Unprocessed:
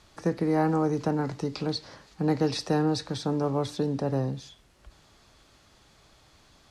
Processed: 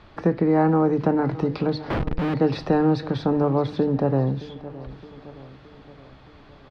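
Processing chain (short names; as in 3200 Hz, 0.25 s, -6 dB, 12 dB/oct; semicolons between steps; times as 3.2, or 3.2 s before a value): notches 50/100/150 Hz; in parallel at +2 dB: compressor, threshold -33 dBFS, peak gain reduction 12.5 dB; 1.9–2.34 on the sum: Schmitt trigger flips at -40.5 dBFS; air absorption 360 m; on a send: feedback echo 0.618 s, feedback 54%, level -17.5 dB; on the sum: gain +4 dB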